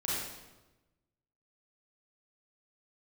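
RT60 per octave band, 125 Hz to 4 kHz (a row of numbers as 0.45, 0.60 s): 1.5, 1.3, 1.2, 1.0, 0.90, 0.85 s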